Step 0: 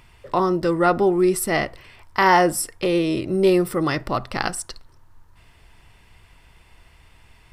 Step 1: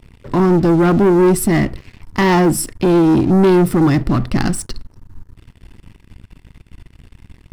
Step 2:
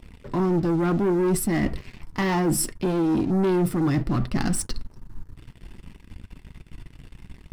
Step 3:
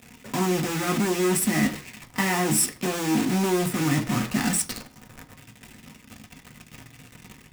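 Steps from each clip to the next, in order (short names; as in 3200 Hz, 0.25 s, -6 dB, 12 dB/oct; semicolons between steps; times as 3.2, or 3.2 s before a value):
resonant low shelf 390 Hz +12 dB, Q 1.5; sample leveller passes 3; gain -7.5 dB
flange 0.65 Hz, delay 3.6 ms, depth 3.4 ms, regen -55%; reverse; compressor 6:1, threshold -23 dBFS, peak gain reduction 10 dB; reverse; gain +2.5 dB
block floating point 3-bit; reverb, pre-delay 3 ms, DRR 5.5 dB; gain +2 dB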